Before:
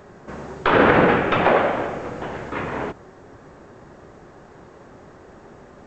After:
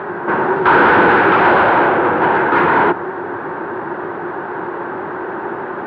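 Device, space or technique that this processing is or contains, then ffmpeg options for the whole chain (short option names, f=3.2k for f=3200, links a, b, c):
overdrive pedal into a guitar cabinet: -filter_complex "[0:a]asplit=2[a][b];[b]highpass=f=720:p=1,volume=33dB,asoftclip=type=tanh:threshold=-3dB[c];[a][c]amix=inputs=2:normalize=0,lowpass=f=1.4k:p=1,volume=-6dB,highpass=94,equalizer=f=100:t=q:w=4:g=6,equalizer=f=170:t=q:w=4:g=4,equalizer=f=350:t=q:w=4:g=10,equalizer=f=600:t=q:w=4:g=-3,equalizer=f=920:t=q:w=4:g=9,equalizer=f=1.5k:t=q:w=4:g=9,lowpass=f=3.4k:w=0.5412,lowpass=f=3.4k:w=1.3066,volume=-4.5dB"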